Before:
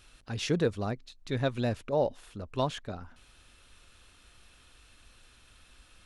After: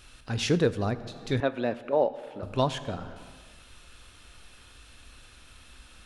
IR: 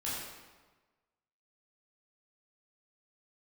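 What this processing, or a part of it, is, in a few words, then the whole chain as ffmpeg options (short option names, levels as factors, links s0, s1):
compressed reverb return: -filter_complex "[0:a]asplit=2[s0][s1];[1:a]atrim=start_sample=2205[s2];[s1][s2]afir=irnorm=-1:irlink=0,acompressor=threshold=0.0224:ratio=5,volume=0.473[s3];[s0][s3]amix=inputs=2:normalize=0,asettb=1/sr,asplit=3[s4][s5][s6];[s4]atrim=end=1.404[s7];[s5]atrim=start=1.4:end=2.43,asetpts=PTS-STARTPTS,afade=t=in:d=0.004:c=qsin,afade=t=out:st=1.026:d=0.004:c=qsin,acrossover=split=220 3200:gain=0.1 1 0.158[s8][s9][s10];[s8][s9][s10]amix=inputs=3:normalize=0[s11];[s6]atrim=start=2.426[s12];[s7][s11]acrossfade=d=0.004:c1=hsin:c2=qsin[s13];[s13][s12]acrossfade=d=0.004:c1=qsin:c2=hsin,volume=1.41"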